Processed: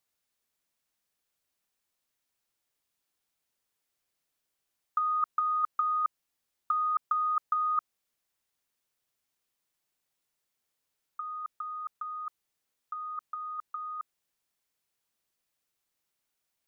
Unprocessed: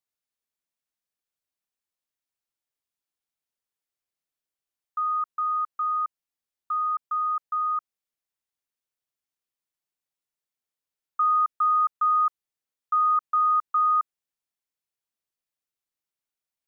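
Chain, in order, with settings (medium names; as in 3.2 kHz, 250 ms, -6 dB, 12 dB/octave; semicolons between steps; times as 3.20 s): compressor with a negative ratio -29 dBFS, ratio -0.5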